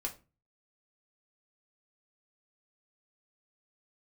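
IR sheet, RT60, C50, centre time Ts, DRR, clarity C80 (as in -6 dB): 0.30 s, 14.0 dB, 11 ms, 0.0 dB, 20.0 dB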